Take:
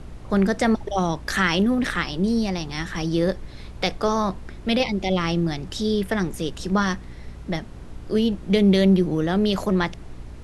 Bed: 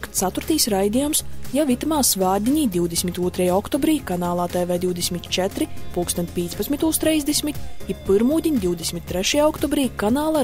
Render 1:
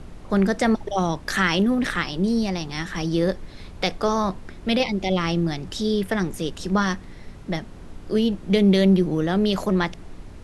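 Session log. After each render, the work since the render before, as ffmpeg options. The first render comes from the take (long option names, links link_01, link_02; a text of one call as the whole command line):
ffmpeg -i in.wav -af "bandreject=frequency=60:width_type=h:width=4,bandreject=frequency=120:width_type=h:width=4" out.wav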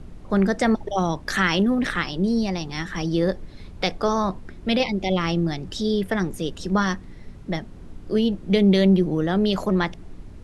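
ffmpeg -i in.wav -af "afftdn=noise_reduction=6:noise_floor=-41" out.wav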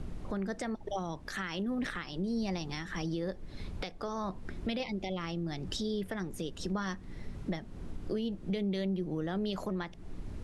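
ffmpeg -i in.wav -af "acompressor=threshold=-33dB:ratio=3,alimiter=level_in=1dB:limit=-24dB:level=0:latency=1:release=443,volume=-1dB" out.wav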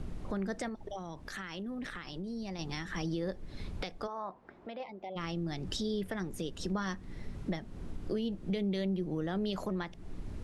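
ffmpeg -i in.wav -filter_complex "[0:a]asettb=1/sr,asplit=3[link_01][link_02][link_03];[link_01]atrim=end=0.684[link_04];[link_02]atrim=start=0.68:end=2.59,asetpts=PTS-STARTPTS,afade=type=in:duration=0.004:curve=qsin,afade=type=out:start_time=1.906:duration=0.004:curve=qsin,acompressor=threshold=-39dB:ratio=2.5:attack=3.2:release=140:knee=1:detection=peak[link_05];[link_03]atrim=start=2.586[link_06];[link_04][link_05]acrossfade=duration=0.004:curve1=hsin:curve2=qsin[link_07];[link_07][link_06]acrossfade=duration=0.004:curve1=qsin:curve2=hsin,asplit=3[link_08][link_09][link_10];[link_08]afade=type=out:start_time=4.06:duration=0.02[link_11];[link_09]bandpass=frequency=830:width_type=q:width=1.3,afade=type=in:start_time=4.06:duration=0.02,afade=type=out:start_time=5.15:duration=0.02[link_12];[link_10]afade=type=in:start_time=5.15:duration=0.02[link_13];[link_11][link_12][link_13]amix=inputs=3:normalize=0" out.wav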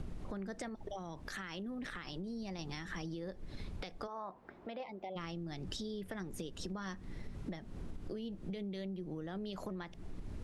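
ffmpeg -i in.wav -af "acompressor=threshold=-39dB:ratio=6" out.wav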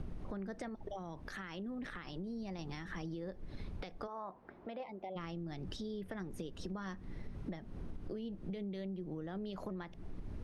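ffmpeg -i in.wav -af "highshelf=frequency=3000:gain=-8,bandreject=frequency=7400:width=8" out.wav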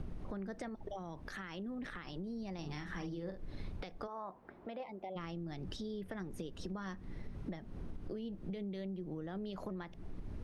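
ffmpeg -i in.wav -filter_complex "[0:a]asettb=1/sr,asplit=3[link_01][link_02][link_03];[link_01]atrim=end=2.584[link_04];[link_02]atrim=start=2.58:end=3.72,asetpts=PTS-STARTPTS,afade=type=in:duration=0.004:curve=qsin,afade=type=out:start_time=1.136:duration=0.004:curve=qsin,asplit=2[link_05][link_06];[link_06]adelay=47,volume=-7dB[link_07];[link_05][link_07]amix=inputs=2:normalize=0,atrim=end_sample=50274[link_08];[link_03]atrim=start=3.716[link_09];[link_04][link_08]acrossfade=duration=0.004:curve1=hsin:curve2=qsin[link_10];[link_10][link_09]acrossfade=duration=0.004:curve1=qsin:curve2=hsin" out.wav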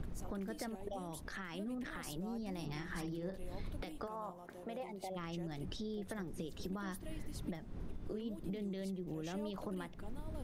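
ffmpeg -i in.wav -i bed.wav -filter_complex "[1:a]volume=-32.5dB[link_01];[0:a][link_01]amix=inputs=2:normalize=0" out.wav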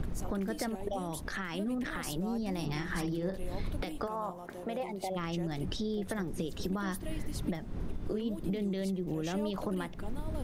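ffmpeg -i in.wav -af "volume=8dB" out.wav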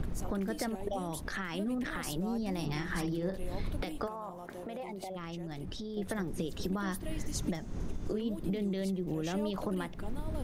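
ffmpeg -i in.wav -filter_complex "[0:a]asettb=1/sr,asplit=3[link_01][link_02][link_03];[link_01]atrim=end=4.084[link_04];[link_02]atrim=start=4.08:end=5.97,asetpts=PTS-STARTPTS,afade=type=in:duration=0.004:curve=qsin,afade=type=out:start_time=1.886:duration=0.004:curve=qsin,acompressor=threshold=-37dB:ratio=4:attack=3.2:release=140:knee=1:detection=peak[link_05];[link_03]atrim=start=5.966[link_06];[link_04][link_05]acrossfade=duration=0.004:curve1=hsin:curve2=qsin[link_07];[link_07][link_06]acrossfade=duration=0.004:curve1=qsin:curve2=hsin,asettb=1/sr,asplit=3[link_08][link_09][link_10];[link_08]atrim=end=7.184[link_11];[link_09]atrim=start=7.18:end=8.12,asetpts=PTS-STARTPTS,afade=type=in:duration=0.004:curve=qsin,afade=type=out:start_time=0.936:duration=0.004:curve=qsin,equalizer=frequency=6500:width_type=o:width=0.59:gain=13[link_12];[link_10]atrim=start=8.116[link_13];[link_11][link_12]acrossfade=duration=0.004:curve1=hsin:curve2=qsin[link_14];[link_14][link_13]acrossfade=duration=0.004:curve1=qsin:curve2=hsin" out.wav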